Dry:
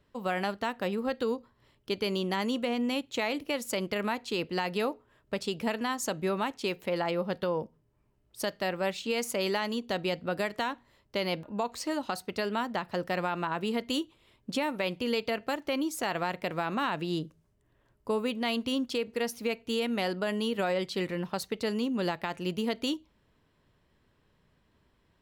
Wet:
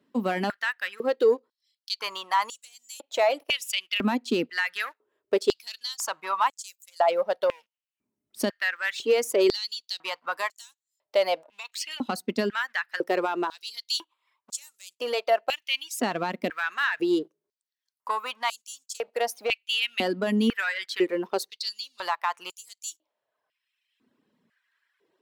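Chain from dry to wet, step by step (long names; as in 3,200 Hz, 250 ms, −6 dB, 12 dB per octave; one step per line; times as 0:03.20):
reverb reduction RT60 1.1 s
leveller curve on the samples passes 1
high-pass on a step sequencer 2 Hz 240–7,200 Hz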